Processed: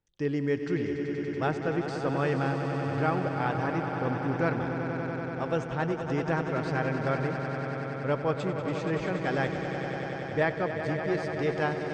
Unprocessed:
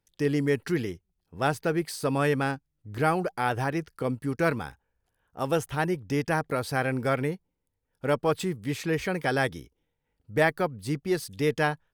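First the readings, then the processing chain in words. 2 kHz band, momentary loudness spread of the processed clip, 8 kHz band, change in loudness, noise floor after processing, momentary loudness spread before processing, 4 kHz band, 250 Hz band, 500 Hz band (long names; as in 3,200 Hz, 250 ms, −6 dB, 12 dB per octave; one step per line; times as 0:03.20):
−2.5 dB, 5 LU, below −10 dB, −2.0 dB, −35 dBFS, 8 LU, −5.5 dB, −0.5 dB, −1.0 dB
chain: Butterworth low-pass 7,600 Hz 36 dB per octave
high-shelf EQ 4,300 Hz −10.5 dB
echo that builds up and dies away 95 ms, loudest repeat 5, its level −10 dB
level −3.5 dB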